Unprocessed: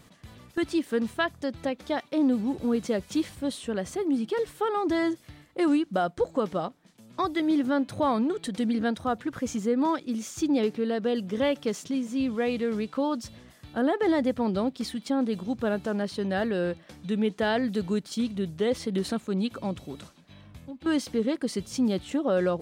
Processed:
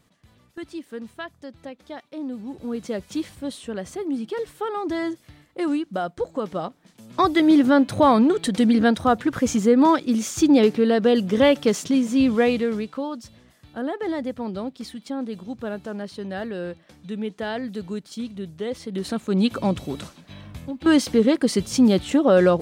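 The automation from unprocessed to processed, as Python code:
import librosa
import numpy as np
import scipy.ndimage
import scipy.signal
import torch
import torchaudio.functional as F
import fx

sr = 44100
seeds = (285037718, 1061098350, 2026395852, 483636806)

y = fx.gain(x, sr, db=fx.line((2.29, -8.0), (2.97, -0.5), (6.42, -0.5), (7.25, 9.0), (12.4, 9.0), (13.11, -3.0), (18.85, -3.0), (19.46, 9.0)))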